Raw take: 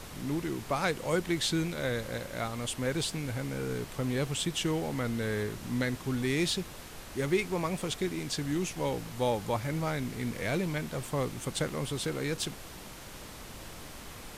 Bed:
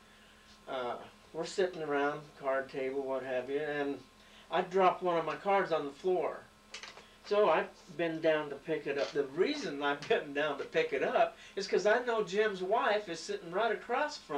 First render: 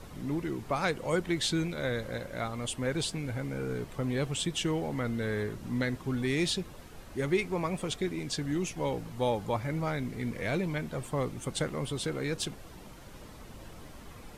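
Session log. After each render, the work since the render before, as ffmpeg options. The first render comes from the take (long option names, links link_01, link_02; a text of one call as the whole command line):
ffmpeg -i in.wav -af "afftdn=noise_reduction=9:noise_floor=-46" out.wav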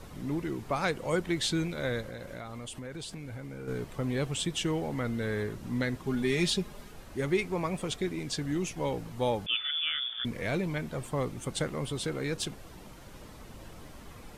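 ffmpeg -i in.wav -filter_complex "[0:a]asettb=1/sr,asplit=3[link_01][link_02][link_03];[link_01]atrim=end=2.014[link_04];[link_02]atrim=start=2.01:end=3.68,asetpts=PTS-STARTPTS,afade=type=in:duration=0.004:curve=qsin,afade=type=out:start_time=1.666:duration=0.004:curve=qsin,acompressor=threshold=-37dB:ratio=6:attack=3.2:release=140:knee=1:detection=peak[link_05];[link_03]atrim=start=3.676[link_06];[link_04][link_05]acrossfade=duration=0.004:curve1=hsin:curve2=qsin[link_07];[link_07][link_06]acrossfade=duration=0.004:curve1=qsin:curve2=hsin,asettb=1/sr,asplit=3[link_08][link_09][link_10];[link_08]atrim=end=6.064[link_11];[link_09]atrim=start=6.06:end=6.92,asetpts=PTS-STARTPTS,afade=type=in:duration=0.004:curve=qsin,afade=type=out:start_time=0.856:duration=0.004:curve=qsin,aecho=1:1:4.9:0.65,atrim=end_sample=37926[link_12];[link_10]atrim=start=6.916[link_13];[link_11][link_12]acrossfade=duration=0.004:curve1=hsin:curve2=qsin[link_14];[link_14][link_13]acrossfade=duration=0.004:curve1=qsin:curve2=hsin,asettb=1/sr,asplit=3[link_15][link_16][link_17];[link_15]atrim=end=9.464[link_18];[link_16]atrim=start=9.46:end=10.25,asetpts=PTS-STARTPTS,afade=type=in:duration=0.004:curve=qsin,afade=type=out:start_time=0.786:duration=0.004:curve=qsin,lowpass=frequency=3100:width_type=q:width=0.5098,lowpass=frequency=3100:width_type=q:width=0.6013,lowpass=frequency=3100:width_type=q:width=0.9,lowpass=frequency=3100:width_type=q:width=2.563,afreqshift=-3600[link_19];[link_17]atrim=start=10.246[link_20];[link_18][link_19]acrossfade=duration=0.004:curve1=hsin:curve2=qsin[link_21];[link_21][link_20]acrossfade=duration=0.004:curve1=qsin:curve2=hsin" out.wav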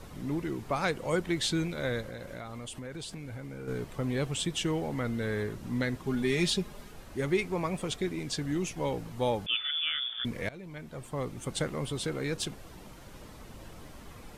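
ffmpeg -i in.wav -filter_complex "[0:a]asplit=2[link_01][link_02];[link_01]atrim=end=10.49,asetpts=PTS-STARTPTS,afade=type=out:start_time=10.486:duration=0.004:curve=hsin:silence=0.1[link_03];[link_02]atrim=start=10.49,asetpts=PTS-STARTPTS,afade=type=in:duration=1.06:silence=0.1[link_04];[link_03][link_04]concat=n=2:v=0:a=1" out.wav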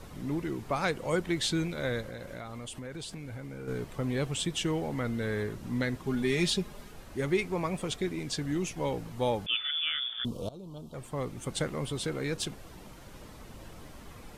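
ffmpeg -i in.wav -filter_complex "[0:a]asettb=1/sr,asplit=3[link_01][link_02][link_03];[link_01]atrim=end=10.254[link_04];[link_02]atrim=start=10.25:end=10.94,asetpts=PTS-STARTPTS,afade=type=in:duration=0.004:curve=qsin,afade=type=out:start_time=0.686:duration=0.004:curve=qsin,asuperstop=centerf=1900:order=8:qfactor=1.1[link_05];[link_03]atrim=start=10.936[link_06];[link_04][link_05]acrossfade=duration=0.004:curve1=hsin:curve2=qsin[link_07];[link_07][link_06]acrossfade=duration=0.004:curve1=qsin:curve2=hsin" out.wav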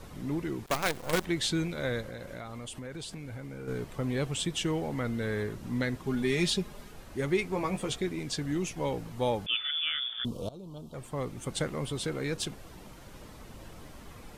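ffmpeg -i in.wav -filter_complex "[0:a]asettb=1/sr,asplit=3[link_01][link_02][link_03];[link_01]atrim=end=0.664[link_04];[link_02]atrim=start=0.66:end=1.25,asetpts=PTS-STARTPTS,afade=type=in:duration=0.004:curve=qsin,afade=type=out:start_time=0.586:duration=0.004:curve=qsin,acrusher=bits=5:dc=4:mix=0:aa=0.000001[link_05];[link_03]atrim=start=1.246[link_06];[link_04][link_05]acrossfade=duration=0.004:curve1=hsin:curve2=qsin[link_07];[link_07][link_06]acrossfade=duration=0.004:curve1=qsin:curve2=hsin,asettb=1/sr,asplit=3[link_08][link_09][link_10];[link_08]atrim=end=7.514[link_11];[link_09]atrim=start=7.51:end=7.99,asetpts=PTS-STARTPTS,afade=type=in:duration=0.004:curve=qsin,afade=type=out:start_time=0.476:duration=0.004:curve=qsin,asplit=2[link_12][link_13];[link_13]adelay=15,volume=-6dB[link_14];[link_12][link_14]amix=inputs=2:normalize=0,atrim=end_sample=21168[link_15];[link_10]atrim=start=7.986[link_16];[link_11][link_15]acrossfade=duration=0.004:curve1=hsin:curve2=qsin[link_17];[link_17][link_16]acrossfade=duration=0.004:curve1=qsin:curve2=hsin" out.wav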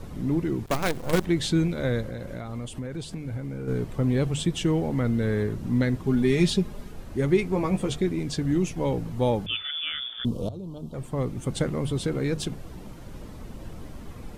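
ffmpeg -i in.wav -af "lowshelf=frequency=470:gain=10.5,bandreject=frequency=50:width_type=h:width=6,bandreject=frequency=100:width_type=h:width=6,bandreject=frequency=150:width_type=h:width=6" out.wav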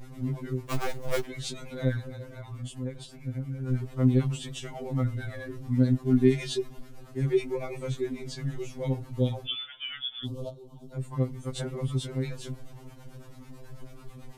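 ffmpeg -i in.wav -filter_complex "[0:a]acrossover=split=490[link_01][link_02];[link_01]aeval=exprs='val(0)*(1-0.7/2+0.7/2*cos(2*PI*9.1*n/s))':channel_layout=same[link_03];[link_02]aeval=exprs='val(0)*(1-0.7/2-0.7/2*cos(2*PI*9.1*n/s))':channel_layout=same[link_04];[link_03][link_04]amix=inputs=2:normalize=0,afftfilt=real='re*2.45*eq(mod(b,6),0)':imag='im*2.45*eq(mod(b,6),0)':win_size=2048:overlap=0.75" out.wav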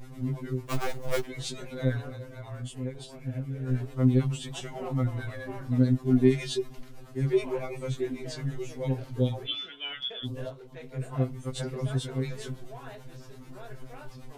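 ffmpeg -i in.wav -i bed.wav -filter_complex "[1:a]volume=-16dB[link_01];[0:a][link_01]amix=inputs=2:normalize=0" out.wav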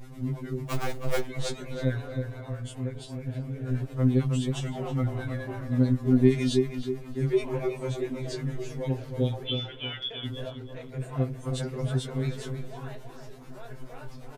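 ffmpeg -i in.wav -filter_complex "[0:a]asplit=2[link_01][link_02];[link_02]adelay=318,lowpass=frequency=1900:poles=1,volume=-6dB,asplit=2[link_03][link_04];[link_04]adelay=318,lowpass=frequency=1900:poles=1,volume=0.41,asplit=2[link_05][link_06];[link_06]adelay=318,lowpass=frequency=1900:poles=1,volume=0.41,asplit=2[link_07][link_08];[link_08]adelay=318,lowpass=frequency=1900:poles=1,volume=0.41,asplit=2[link_09][link_10];[link_10]adelay=318,lowpass=frequency=1900:poles=1,volume=0.41[link_11];[link_01][link_03][link_05][link_07][link_09][link_11]amix=inputs=6:normalize=0" out.wav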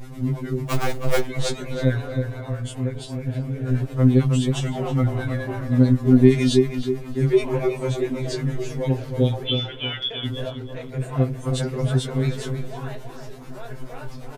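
ffmpeg -i in.wav -af "volume=7dB,alimiter=limit=-1dB:level=0:latency=1" out.wav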